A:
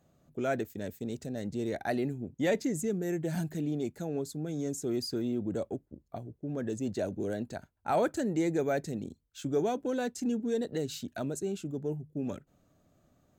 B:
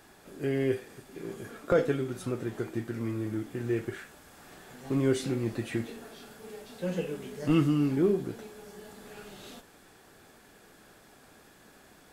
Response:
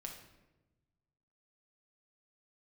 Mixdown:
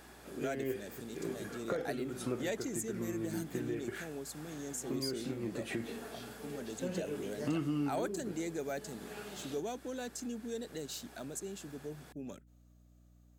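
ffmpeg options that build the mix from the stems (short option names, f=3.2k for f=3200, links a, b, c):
-filter_complex "[0:a]highshelf=f=3.1k:g=11,volume=-9.5dB,asplit=2[a][b];[1:a]acompressor=threshold=-31dB:ratio=6,volume=1dB[c];[b]apad=whole_len=534662[d];[c][d]sidechaincompress=threshold=-42dB:ratio=8:attack=30:release=293[e];[a][e]amix=inputs=2:normalize=0,highpass=140,aeval=exprs='val(0)+0.000891*(sin(2*PI*60*n/s)+sin(2*PI*2*60*n/s)/2+sin(2*PI*3*60*n/s)/3+sin(2*PI*4*60*n/s)/4+sin(2*PI*5*60*n/s)/5)':c=same"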